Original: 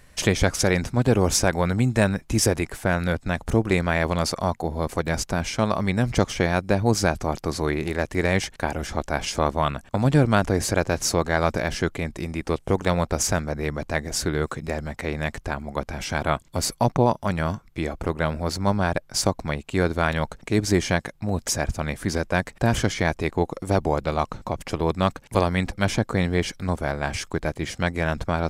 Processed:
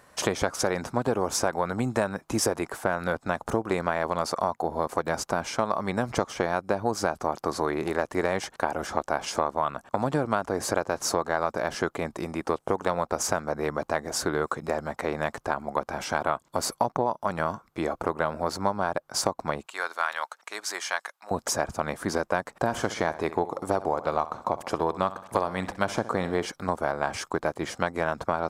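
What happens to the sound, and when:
19.66–21.31 s: high-pass 1.3 kHz
22.51–26.46 s: feedback delay 64 ms, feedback 44%, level -16.5 dB
whole clip: high-pass 630 Hz 6 dB/octave; resonant high shelf 1.6 kHz -8.5 dB, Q 1.5; compression, threshold -27 dBFS; trim +6 dB

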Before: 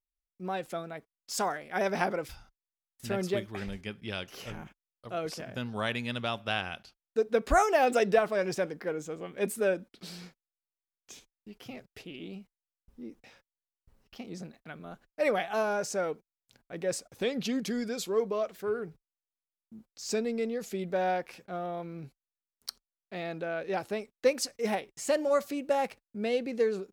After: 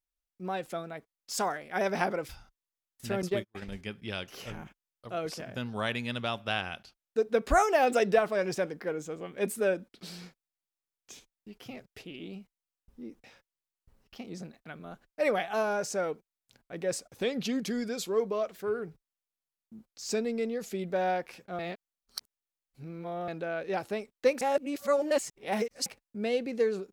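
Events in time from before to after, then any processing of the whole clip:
3.22–3.72 s: gate -37 dBFS, range -37 dB
21.59–23.28 s: reverse
24.41–25.86 s: reverse

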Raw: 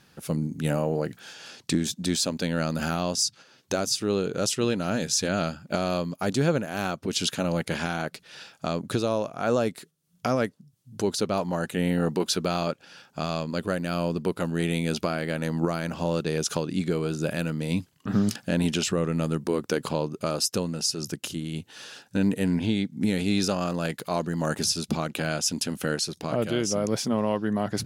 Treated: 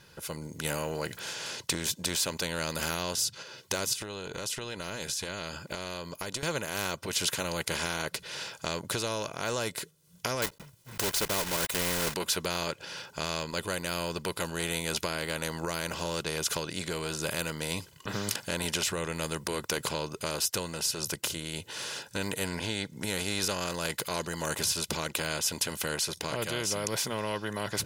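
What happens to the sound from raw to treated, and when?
3.93–6.43 s: compression, threshold -33 dBFS
10.42–12.16 s: block-companded coder 3-bit
whole clip: comb 2 ms, depth 60%; level rider gain up to 9 dB; spectrum-flattening compressor 2:1; trim -5.5 dB

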